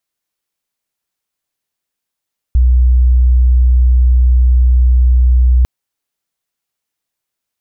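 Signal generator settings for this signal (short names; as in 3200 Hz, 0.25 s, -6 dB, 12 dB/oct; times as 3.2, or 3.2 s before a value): tone sine 62 Hz -5.5 dBFS 3.10 s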